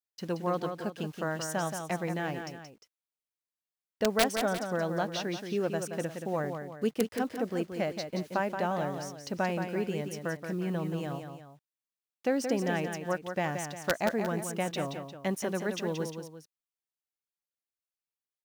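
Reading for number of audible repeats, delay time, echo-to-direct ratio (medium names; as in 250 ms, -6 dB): 2, 176 ms, -6.0 dB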